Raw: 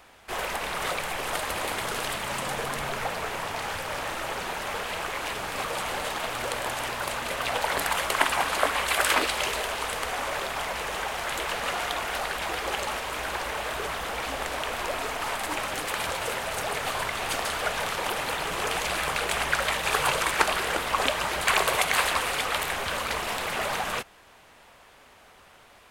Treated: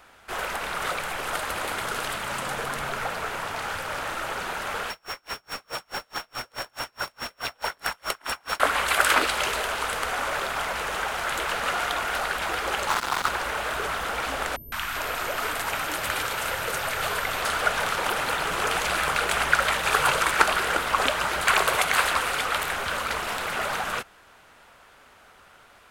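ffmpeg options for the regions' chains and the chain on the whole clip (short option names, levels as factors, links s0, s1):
-filter_complex "[0:a]asettb=1/sr,asplit=3[s0][s1][s2];[s0]atrim=end=4.904[s3];[s1]atrim=start=4.9:end=8.6,asetpts=PTS-STARTPTS,afade=t=in:d=0.004:c=qsin,afade=t=out:st=3.696:d=0.004:c=qsin,acrusher=bits=7:dc=4:mix=0:aa=0.000001,aeval=exprs='val(0)+0.0224*sin(2*PI*5500*n/s)':c=same,aeval=exprs='val(0)*pow(10,-40*(0.5-0.5*cos(2*PI*4.7*n/s))/20)':c=same[s4];[s2]atrim=start=8.596[s5];[s3][s4]acrossfade=d=0.004:c1=hsin:c2=qsin[s6];[s6][s5]acrossfade=d=0.004:c1=qsin:c2=hsin,asettb=1/sr,asplit=3[s7][s8][s9];[s7]atrim=end=12.894[s10];[s8]atrim=start=12.89:end=13.29,asetpts=PTS-STARTPTS,afade=t=in:d=0.004:c=qsin,afade=t=out:st=0.396:d=0.004:c=qsin,highpass=f=1200:t=q:w=3.3,acrusher=bits=3:mix=0:aa=0.5,afreqshift=-250[s11];[s9]atrim=start=13.286[s12];[s10][s11]acrossfade=d=0.004:c1=hsin:c2=qsin[s13];[s13][s12]acrossfade=d=0.004:c1=qsin:c2=hsin,asettb=1/sr,asplit=3[s14][s15][s16];[s14]atrim=end=14.564[s17];[s15]atrim=start=14.56:end=17.42,asetpts=PTS-STARTPTS,afade=t=in:d=0.004:c=qsin,afade=t=out:st=2.856:d=0.004:c=qsin,acrossover=split=260|880[s18][s19][s20];[s20]adelay=160[s21];[s19]adelay=400[s22];[s18][s22][s21]amix=inputs=3:normalize=0,atrim=end_sample=126126,aeval=exprs='val(0)+0.00562*sin(2*PI*13000*n/s)':c=same[s23];[s16]atrim=start=17.416[s24];[s17][s23]acrossfade=d=0.004:c1=hsin:c2=qsin[s25];[s25][s24]acrossfade=d=0.004:c1=qsin:c2=hsin,equalizer=f=1400:w=4:g=7,dynaudnorm=f=700:g=17:m=3.76,volume=0.891"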